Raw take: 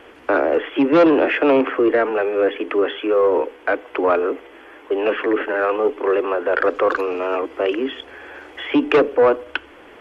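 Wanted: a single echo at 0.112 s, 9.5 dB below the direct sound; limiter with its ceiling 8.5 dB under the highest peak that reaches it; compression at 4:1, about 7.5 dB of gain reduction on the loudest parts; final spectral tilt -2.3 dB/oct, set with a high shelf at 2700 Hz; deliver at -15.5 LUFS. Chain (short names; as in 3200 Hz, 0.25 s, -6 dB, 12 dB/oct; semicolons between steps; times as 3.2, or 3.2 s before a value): high shelf 2700 Hz -6.5 dB; compressor 4:1, threshold -19 dBFS; limiter -18 dBFS; echo 0.112 s -9.5 dB; gain +11 dB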